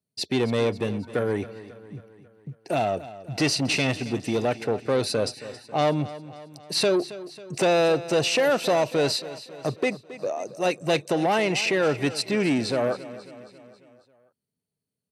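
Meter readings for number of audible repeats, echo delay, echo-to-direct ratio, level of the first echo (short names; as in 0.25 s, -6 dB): 4, 0.272 s, -14.5 dB, -16.0 dB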